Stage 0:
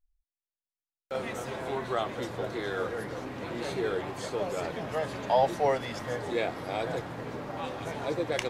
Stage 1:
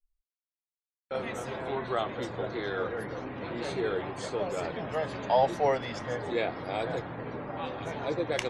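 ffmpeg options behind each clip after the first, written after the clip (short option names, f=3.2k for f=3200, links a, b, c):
-af "afftdn=nr=27:nf=-54"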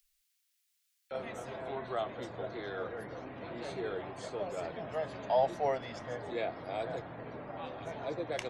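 -filter_complex "[0:a]equalizer=f=660:w=5.3:g=6.5,acrossover=split=370|1700[a][b][c];[c]acompressor=mode=upward:threshold=-48dB:ratio=2.5[d];[a][b][d]amix=inputs=3:normalize=0,volume=-7.5dB"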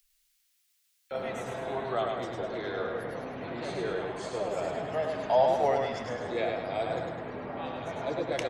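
-af "aecho=1:1:103|206|309|412|515|618:0.668|0.314|0.148|0.0694|0.0326|0.0153,volume=4dB"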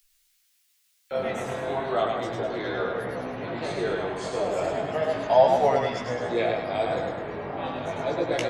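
-af "flanger=delay=15.5:depth=6.2:speed=0.34,volume=8dB"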